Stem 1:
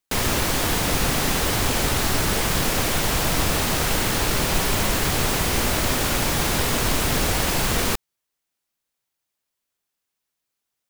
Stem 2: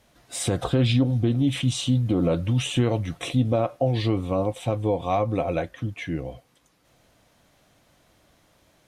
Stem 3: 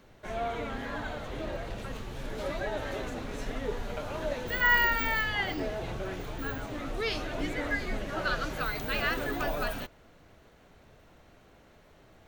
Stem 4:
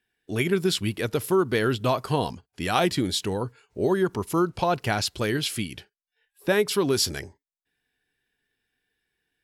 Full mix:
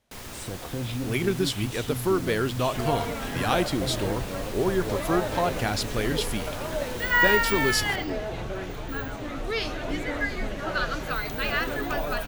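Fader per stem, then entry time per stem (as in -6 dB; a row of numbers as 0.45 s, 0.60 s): -18.0 dB, -11.5 dB, +3.0 dB, -2.5 dB; 0.00 s, 0.00 s, 2.50 s, 0.75 s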